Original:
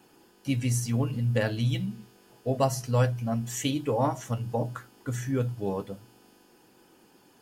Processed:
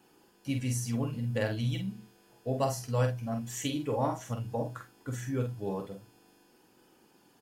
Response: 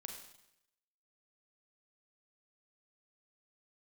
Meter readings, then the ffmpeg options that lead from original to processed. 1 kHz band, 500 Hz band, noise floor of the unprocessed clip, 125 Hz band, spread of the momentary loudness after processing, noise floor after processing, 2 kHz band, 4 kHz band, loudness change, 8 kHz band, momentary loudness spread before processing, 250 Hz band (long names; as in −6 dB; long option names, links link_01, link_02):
−4.0 dB, −3.5 dB, −60 dBFS, −5.0 dB, 10 LU, −64 dBFS, −4.0 dB, −4.0 dB, −4.5 dB, −4.0 dB, 11 LU, −4.0 dB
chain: -filter_complex "[0:a]asplit=2[link_01][link_02];[link_02]adelay=47,volume=-6dB[link_03];[link_01][link_03]amix=inputs=2:normalize=0,volume=-5dB"